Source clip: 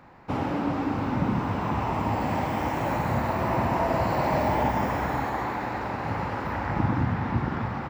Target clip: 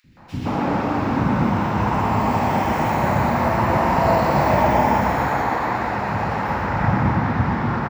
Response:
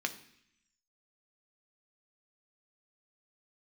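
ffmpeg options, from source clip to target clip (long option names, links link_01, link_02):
-filter_complex "[0:a]acrossover=split=290|2600[link_01][link_02][link_03];[link_01]adelay=40[link_04];[link_02]adelay=170[link_05];[link_04][link_05][link_03]amix=inputs=3:normalize=0,asplit=2[link_06][link_07];[1:a]atrim=start_sample=2205,adelay=121[link_08];[link_07][link_08]afir=irnorm=-1:irlink=0,volume=-3dB[link_09];[link_06][link_09]amix=inputs=2:normalize=0,volume=5.5dB"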